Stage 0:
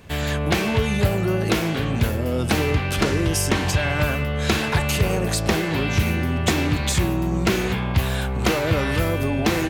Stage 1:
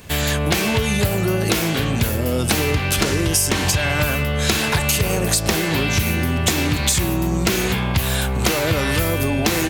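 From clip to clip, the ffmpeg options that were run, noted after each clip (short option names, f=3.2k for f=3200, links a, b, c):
-af "highshelf=f=4.4k:g=11.5,acompressor=threshold=-18dB:ratio=6,volume=3.5dB"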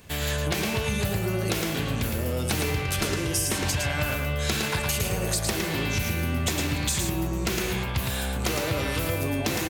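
-af "aecho=1:1:111:0.596,volume=-9dB"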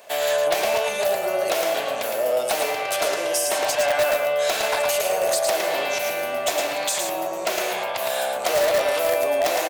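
-filter_complex "[0:a]highpass=f=630:t=q:w=6.5,asplit=2[a][b];[b]aeval=exprs='(mod(5.96*val(0)+1,2)-1)/5.96':c=same,volume=-6dB[c];[a][c]amix=inputs=2:normalize=0,volume=-1dB"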